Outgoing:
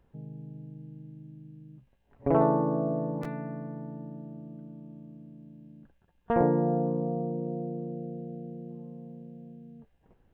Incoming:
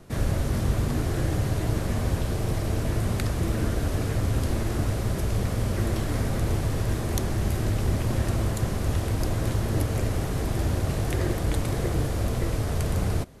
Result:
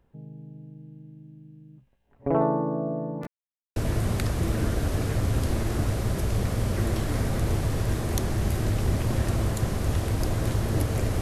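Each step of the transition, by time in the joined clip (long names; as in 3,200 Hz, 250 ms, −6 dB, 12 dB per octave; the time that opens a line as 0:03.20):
outgoing
0:03.27–0:03.76: silence
0:03.76: continue with incoming from 0:02.76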